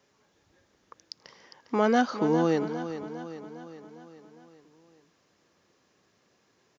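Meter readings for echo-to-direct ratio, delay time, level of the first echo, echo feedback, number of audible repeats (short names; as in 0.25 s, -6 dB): -9.5 dB, 0.405 s, -11.0 dB, 56%, 5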